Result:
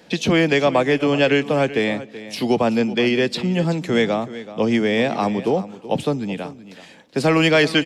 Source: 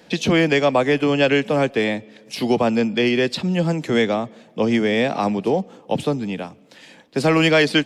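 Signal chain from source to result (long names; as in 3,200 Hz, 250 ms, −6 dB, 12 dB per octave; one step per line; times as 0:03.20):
single-tap delay 379 ms −15.5 dB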